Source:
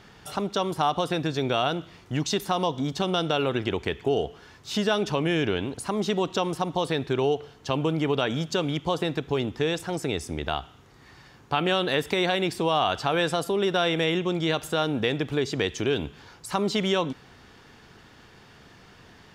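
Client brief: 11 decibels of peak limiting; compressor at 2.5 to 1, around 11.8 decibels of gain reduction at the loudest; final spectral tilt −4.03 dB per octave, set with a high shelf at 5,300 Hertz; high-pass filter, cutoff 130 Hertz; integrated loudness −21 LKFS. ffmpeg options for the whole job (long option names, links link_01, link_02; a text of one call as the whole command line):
ffmpeg -i in.wav -af "highpass=130,highshelf=frequency=5300:gain=7,acompressor=threshold=-38dB:ratio=2.5,volume=20dB,alimiter=limit=-9.5dB:level=0:latency=1" out.wav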